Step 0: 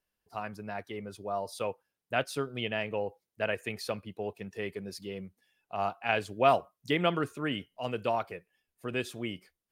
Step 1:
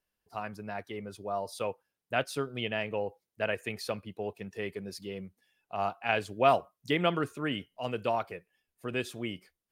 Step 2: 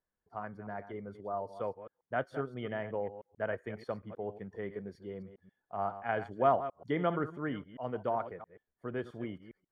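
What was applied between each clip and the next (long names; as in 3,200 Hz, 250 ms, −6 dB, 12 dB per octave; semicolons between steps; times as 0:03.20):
no processing that can be heard
delay that plays each chunk backwards 134 ms, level −12 dB; Savitzky-Golay smoothing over 41 samples; level −3 dB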